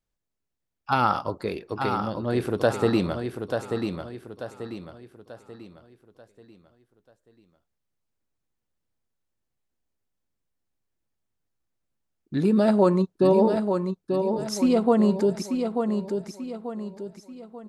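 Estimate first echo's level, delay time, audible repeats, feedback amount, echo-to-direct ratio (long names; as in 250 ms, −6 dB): −6.0 dB, 888 ms, 4, 40%, −5.0 dB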